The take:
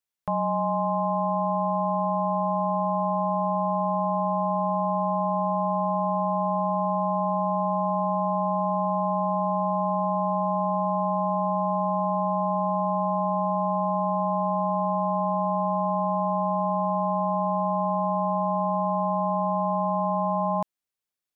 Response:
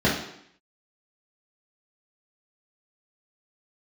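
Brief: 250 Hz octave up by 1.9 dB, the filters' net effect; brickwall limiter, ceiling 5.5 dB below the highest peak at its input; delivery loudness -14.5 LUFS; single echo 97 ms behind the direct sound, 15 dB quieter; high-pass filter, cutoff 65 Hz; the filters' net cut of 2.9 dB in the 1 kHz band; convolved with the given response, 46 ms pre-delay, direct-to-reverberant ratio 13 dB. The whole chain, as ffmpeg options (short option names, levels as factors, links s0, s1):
-filter_complex "[0:a]highpass=65,equalizer=f=250:t=o:g=3.5,equalizer=f=1000:t=o:g=-3.5,alimiter=limit=0.075:level=0:latency=1,aecho=1:1:97:0.178,asplit=2[s0][s1];[1:a]atrim=start_sample=2205,adelay=46[s2];[s1][s2]afir=irnorm=-1:irlink=0,volume=0.0299[s3];[s0][s3]amix=inputs=2:normalize=0,volume=4.47"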